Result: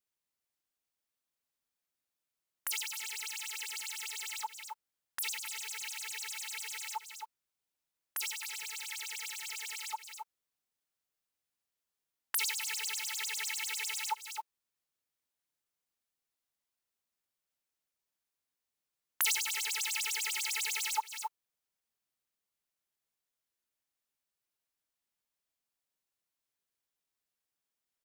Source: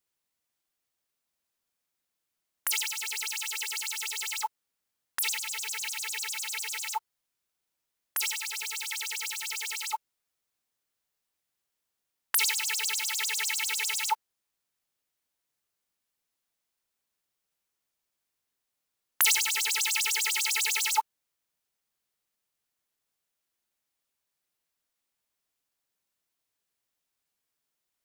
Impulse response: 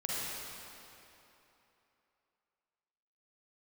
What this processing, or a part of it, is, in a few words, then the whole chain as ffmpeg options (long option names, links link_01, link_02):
ducked delay: -filter_complex "[0:a]asplit=3[link_01][link_02][link_03];[link_02]adelay=268,volume=-6dB[link_04];[link_03]apad=whole_len=1248820[link_05];[link_04][link_05]sidechaincompress=threshold=-36dB:ratio=12:attack=6.4:release=135[link_06];[link_01][link_06]amix=inputs=2:normalize=0,volume=-7dB"